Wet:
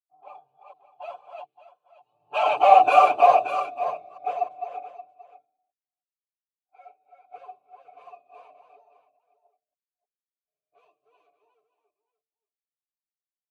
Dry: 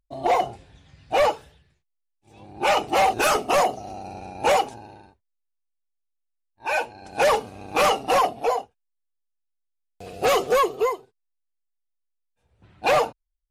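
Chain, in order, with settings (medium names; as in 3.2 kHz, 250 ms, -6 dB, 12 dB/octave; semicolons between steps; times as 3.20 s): chunks repeated in reverse 276 ms, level -3 dB; Doppler pass-by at 2.74 s, 42 m/s, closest 18 m; vowel filter a; peaking EQ 140 Hz +7 dB 0.24 oct; band-stop 5.4 kHz, Q 5.7; comb 6.8 ms, depth 95%; de-hum 63.92 Hz, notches 7; on a send: delay 577 ms -9 dB; on the sum: three bands expanded up and down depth 70%; trim +1.5 dB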